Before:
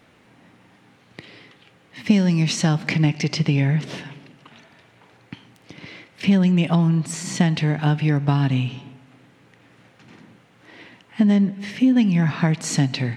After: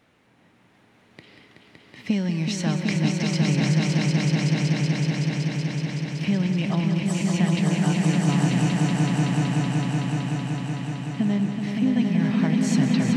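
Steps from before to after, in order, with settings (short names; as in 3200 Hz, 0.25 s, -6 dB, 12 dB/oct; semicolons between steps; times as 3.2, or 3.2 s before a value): swelling echo 0.188 s, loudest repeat 5, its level -4 dB; gain -7 dB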